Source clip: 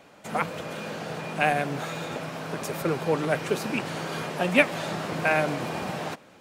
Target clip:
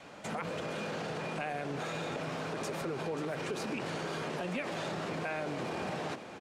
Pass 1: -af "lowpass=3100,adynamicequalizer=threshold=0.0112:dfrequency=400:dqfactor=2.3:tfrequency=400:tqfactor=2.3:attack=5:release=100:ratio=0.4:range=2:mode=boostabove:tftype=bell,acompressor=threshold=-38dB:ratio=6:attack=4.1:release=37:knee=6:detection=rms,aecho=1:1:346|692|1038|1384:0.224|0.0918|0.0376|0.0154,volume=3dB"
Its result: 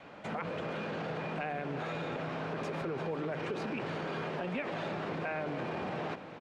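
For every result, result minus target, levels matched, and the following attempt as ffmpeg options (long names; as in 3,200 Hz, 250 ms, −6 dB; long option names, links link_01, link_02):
8,000 Hz band −13.0 dB; echo 190 ms early
-af "lowpass=8500,adynamicequalizer=threshold=0.0112:dfrequency=400:dqfactor=2.3:tfrequency=400:tqfactor=2.3:attack=5:release=100:ratio=0.4:range=2:mode=boostabove:tftype=bell,acompressor=threshold=-38dB:ratio=6:attack=4.1:release=37:knee=6:detection=rms,aecho=1:1:346|692|1038|1384:0.224|0.0918|0.0376|0.0154,volume=3dB"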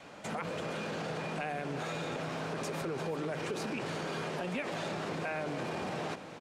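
echo 190 ms early
-af "lowpass=8500,adynamicequalizer=threshold=0.0112:dfrequency=400:dqfactor=2.3:tfrequency=400:tqfactor=2.3:attack=5:release=100:ratio=0.4:range=2:mode=boostabove:tftype=bell,acompressor=threshold=-38dB:ratio=6:attack=4.1:release=37:knee=6:detection=rms,aecho=1:1:536|1072|1608|2144:0.224|0.0918|0.0376|0.0154,volume=3dB"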